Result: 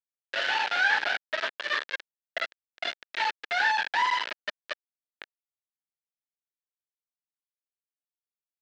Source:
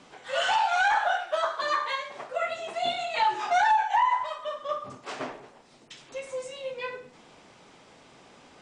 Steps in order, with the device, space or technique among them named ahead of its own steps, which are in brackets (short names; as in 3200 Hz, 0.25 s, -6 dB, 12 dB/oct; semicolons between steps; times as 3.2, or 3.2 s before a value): 3.91–4.67 comb 3 ms, depth 82%; hand-held game console (bit-crush 4-bit; speaker cabinet 450–4200 Hz, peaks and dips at 740 Hz -8 dB, 1100 Hz -9 dB, 1700 Hz +8 dB); gain -2 dB